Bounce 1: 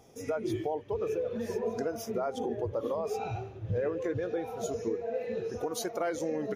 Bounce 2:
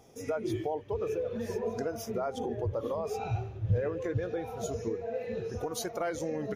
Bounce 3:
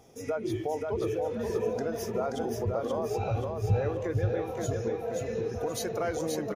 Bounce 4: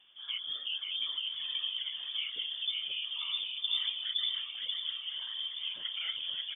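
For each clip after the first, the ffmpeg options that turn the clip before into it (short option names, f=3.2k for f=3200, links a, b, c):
-af "asubboost=boost=3:cutoff=150"
-af "aecho=1:1:529|1058|1587|2116|2645:0.668|0.254|0.0965|0.0367|0.0139,volume=1dB"
-af "acrusher=bits=9:mix=0:aa=0.000001,afftfilt=real='hypot(re,im)*cos(2*PI*random(0))':imag='hypot(re,im)*sin(2*PI*random(1))':win_size=512:overlap=0.75,lowpass=f=3.1k:t=q:w=0.5098,lowpass=f=3.1k:t=q:w=0.6013,lowpass=f=3.1k:t=q:w=0.9,lowpass=f=3.1k:t=q:w=2.563,afreqshift=-3600"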